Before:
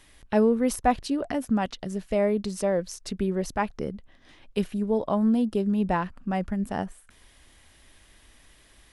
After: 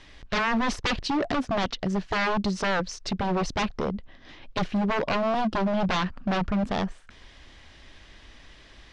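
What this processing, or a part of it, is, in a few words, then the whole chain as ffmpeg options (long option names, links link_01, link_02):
synthesiser wavefolder: -af "aeval=exprs='0.0501*(abs(mod(val(0)/0.0501+3,4)-2)-1)':channel_layout=same,lowpass=frequency=5700:width=0.5412,lowpass=frequency=5700:width=1.3066,volume=6.5dB"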